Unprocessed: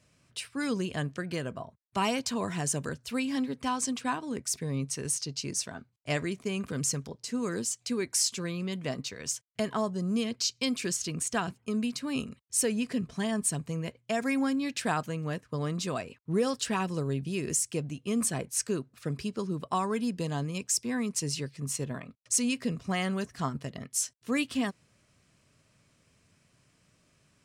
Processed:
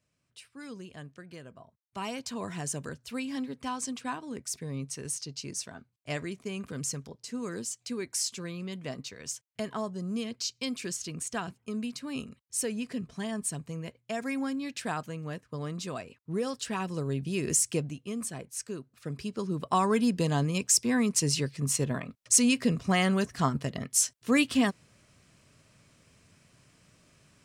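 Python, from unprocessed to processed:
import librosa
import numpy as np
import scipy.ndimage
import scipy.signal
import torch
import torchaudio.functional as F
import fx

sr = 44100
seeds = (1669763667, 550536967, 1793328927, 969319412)

y = fx.gain(x, sr, db=fx.line((1.54, -12.5), (2.46, -4.0), (16.63, -4.0), (17.71, 4.0), (18.18, -7.0), (18.78, -7.0), (19.89, 5.0)))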